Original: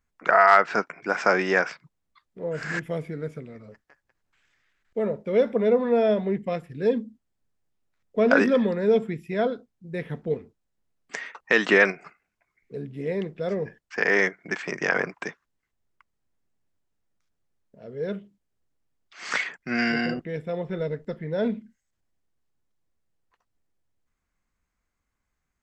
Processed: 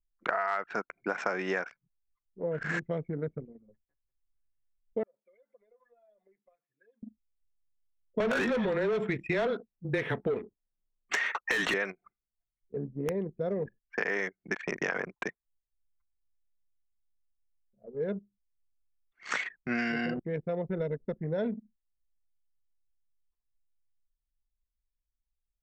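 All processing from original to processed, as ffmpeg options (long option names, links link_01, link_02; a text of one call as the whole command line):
ffmpeg -i in.wav -filter_complex "[0:a]asettb=1/sr,asplit=3[link_01][link_02][link_03];[link_01]atrim=end=5.034[link_04];[link_02]atrim=start=5.03:end=7.03,asetpts=PTS-STARTPTS,afade=type=in:duration=0.004:curve=qsin,afade=type=out:start_time=1.996:duration=0.004:curve=qsin,highpass=1200,acompressor=threshold=-43dB:ratio=20:attack=3.2:release=140:knee=1:detection=peak[link_05];[link_03]atrim=start=7.026[link_06];[link_04][link_05]acrossfade=duration=0.004:curve1=hsin:curve2=qsin[link_07];[link_07][link_06]acrossfade=duration=0.004:curve1=qsin:curve2=hsin,asettb=1/sr,asplit=3[link_08][link_09][link_10];[link_08]atrim=end=8.204[link_11];[link_09]atrim=start=8.2:end=11.74,asetpts=PTS-STARTPTS,afade=type=in:duration=0.004:curve=qsin,afade=type=out:start_time=3.536:duration=0.004:curve=qsin,afreqshift=-17,asplit=2[link_12][link_13];[link_13]highpass=frequency=720:poles=1,volume=25dB,asoftclip=type=tanh:threshold=-5dB[link_14];[link_12][link_14]amix=inputs=2:normalize=0,lowpass=frequency=4400:poles=1,volume=-6dB,acompressor=threshold=-16dB:ratio=3:attack=3.2:release=140:knee=1:detection=peak[link_15];[link_10]atrim=start=11.736[link_16];[link_11][link_15]acrossfade=duration=0.004:curve1=hsin:curve2=qsin[link_17];[link_17][link_16]acrossfade=duration=0.004:curve1=qsin:curve2=hsin,asettb=1/sr,asplit=3[link_18][link_19][link_20];[link_18]atrim=end=12.854[link_21];[link_19]atrim=start=12.85:end=13.56,asetpts=PTS-STARTPTS,afade=type=in:duration=0.004:curve=qsin,afade=type=out:start_time=0.706:duration=0.004:curve=qsin,equalizer=frequency=2500:width=0.87:gain=-6.5,aeval=exprs='(mod(8.91*val(0)+1,2)-1)/8.91':channel_layout=same[link_22];[link_20]atrim=start=13.556[link_23];[link_21][link_22]acrossfade=duration=0.004:curve1=hsin:curve2=qsin[link_24];[link_24][link_23]acrossfade=duration=0.004:curve1=qsin:curve2=hsin,anlmdn=10,bandreject=frequency=4900:width=7.3,acompressor=threshold=-28dB:ratio=6" out.wav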